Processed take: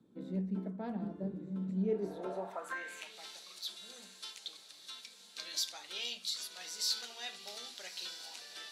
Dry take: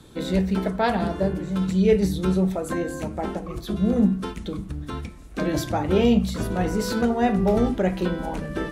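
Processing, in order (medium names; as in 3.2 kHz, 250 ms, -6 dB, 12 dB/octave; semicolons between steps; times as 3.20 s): RIAA curve recording; echo that smears into a reverb 1272 ms, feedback 54%, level -11.5 dB; band-pass sweep 210 Hz -> 4.3 kHz, 1.80–3.24 s; trim -3.5 dB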